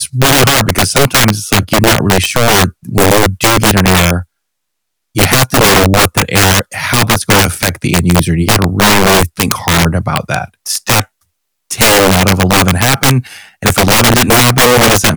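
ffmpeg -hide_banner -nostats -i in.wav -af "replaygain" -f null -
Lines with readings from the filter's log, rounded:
track_gain = -9.0 dB
track_peak = 0.556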